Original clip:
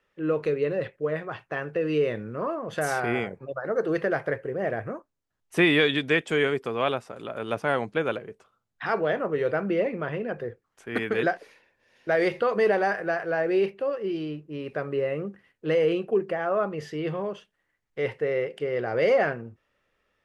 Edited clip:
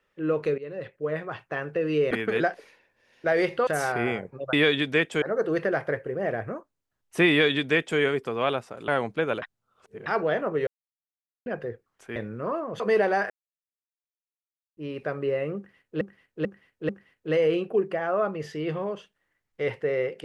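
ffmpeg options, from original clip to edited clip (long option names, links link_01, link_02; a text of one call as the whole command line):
ffmpeg -i in.wav -filter_complex "[0:a]asplit=18[link_01][link_02][link_03][link_04][link_05][link_06][link_07][link_08][link_09][link_10][link_11][link_12][link_13][link_14][link_15][link_16][link_17][link_18];[link_01]atrim=end=0.58,asetpts=PTS-STARTPTS,afade=type=out:start_time=0.576:duration=0.004:curve=hsin:silence=0.158489[link_19];[link_02]atrim=start=0.58:end=2.112,asetpts=PTS-STARTPTS,afade=type=in:duration=0.6:silence=0.158489[link_20];[link_03]atrim=start=10.938:end=12.502[link_21];[link_04]atrim=start=2.748:end=3.612[link_22];[link_05]atrim=start=5.688:end=6.382[link_23];[link_06]atrim=start=3.608:end=7.272[link_24];[link_07]atrim=start=7.658:end=8.202[link_25];[link_08]atrim=start=8.198:end=8.842,asetpts=PTS-STARTPTS,areverse[link_26];[link_09]atrim=start=8.838:end=9.45,asetpts=PTS-STARTPTS,afade=type=out:start_time=0.608:duration=0.004:curve=hsin[link_27];[link_10]atrim=start=9.45:end=10.24,asetpts=PTS-STARTPTS,volume=0[link_28];[link_11]atrim=start=10.24:end=10.942,asetpts=PTS-STARTPTS,afade=type=in:duration=0.004:curve=hsin[link_29];[link_12]atrim=start=2.108:end=2.752[link_30];[link_13]atrim=start=12.498:end=13,asetpts=PTS-STARTPTS,afade=type=out:start_time=0.498:duration=0.004:curve=hsin[link_31];[link_14]atrim=start=13:end=14.47,asetpts=PTS-STARTPTS,volume=0[link_32];[link_15]atrim=start=14.47:end=15.712,asetpts=PTS-STARTPTS,afade=type=in:duration=0.004:curve=hsin[link_33];[link_16]atrim=start=15.268:end=15.712[link_34];[link_17]atrim=start=15.268:end=15.712[link_35];[link_18]atrim=start=15.268[link_36];[link_19][link_20]concat=n=2:v=0:a=1[link_37];[link_37][link_21]acrossfade=duration=0.004:curve1=hsin:curve2=hsin[link_38];[link_38][link_22]acrossfade=duration=0.004:curve1=hsin:curve2=hsin[link_39];[link_39][link_23]acrossfade=duration=0.004:curve1=hsin:curve2=hsin[link_40];[link_40][link_24]acrossfade=duration=0.004:curve1=hsin:curve2=hsin[link_41];[link_41][link_25]acrossfade=duration=0.004:curve1=hsin:curve2=hsin[link_42];[link_42][link_26]acrossfade=duration=0.004:curve1=hsin:curve2=hsin[link_43];[link_27][link_28][link_29]concat=n=3:v=0:a=1[link_44];[link_43][link_44]acrossfade=duration=0.004:curve1=hsin:curve2=hsin[link_45];[link_45][link_30]acrossfade=duration=0.004:curve1=hsin:curve2=hsin[link_46];[link_31][link_32][link_33]concat=n=3:v=0:a=1[link_47];[link_46][link_47]acrossfade=duration=0.004:curve1=hsin:curve2=hsin[link_48];[link_48][link_34]acrossfade=duration=0.004:curve1=hsin:curve2=hsin[link_49];[link_49][link_35]acrossfade=duration=0.004:curve1=hsin:curve2=hsin[link_50];[link_50][link_36]acrossfade=duration=0.004:curve1=hsin:curve2=hsin" out.wav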